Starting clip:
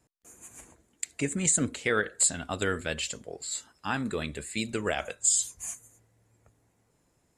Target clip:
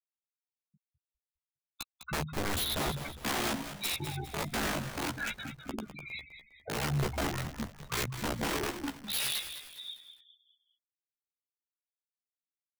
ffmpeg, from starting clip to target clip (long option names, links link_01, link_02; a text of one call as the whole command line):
ffmpeg -i in.wav -filter_complex "[0:a]asetrate=41625,aresample=44100,atempo=1.05946,acompressor=mode=upward:threshold=-41dB:ratio=2.5,asetrate=25442,aresample=44100,acrossover=split=770|1600[link_01][link_02][link_03];[link_02]acompressor=threshold=-50dB:ratio=16[link_04];[link_01][link_04][link_03]amix=inputs=3:normalize=0,aeval=exprs='val(0)+0.00158*(sin(2*PI*60*n/s)+sin(2*PI*2*60*n/s)/2+sin(2*PI*3*60*n/s)/3+sin(2*PI*4*60*n/s)/4+sin(2*PI*5*60*n/s)/5)':channel_layout=same,highpass=frequency=97:width=0.5412,highpass=frequency=97:width=1.3066,aresample=8000,aresample=44100,afftfilt=real='re*gte(hypot(re,im),0.0316)':imag='im*gte(hypot(re,im),0.0316)':win_size=1024:overlap=0.75,aeval=exprs='(mod(25.1*val(0)+1,2)-1)/25.1':channel_layout=same,asplit=2[link_05][link_06];[link_06]adelay=14,volume=-4.5dB[link_07];[link_05][link_07]amix=inputs=2:normalize=0,asplit=5[link_08][link_09][link_10][link_11][link_12];[link_09]adelay=203,afreqshift=-73,volume=-10.5dB[link_13];[link_10]adelay=406,afreqshift=-146,volume=-18.2dB[link_14];[link_11]adelay=609,afreqshift=-219,volume=-26dB[link_15];[link_12]adelay=812,afreqshift=-292,volume=-33.7dB[link_16];[link_08][link_13][link_14][link_15][link_16]amix=inputs=5:normalize=0" out.wav